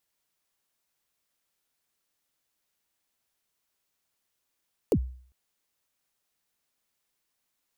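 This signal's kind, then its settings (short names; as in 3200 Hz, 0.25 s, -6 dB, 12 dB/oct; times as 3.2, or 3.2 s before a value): kick drum length 0.40 s, from 540 Hz, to 63 Hz, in 67 ms, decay 0.51 s, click on, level -16.5 dB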